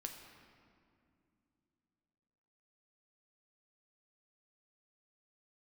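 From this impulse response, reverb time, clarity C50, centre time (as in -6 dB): not exponential, 5.5 dB, 48 ms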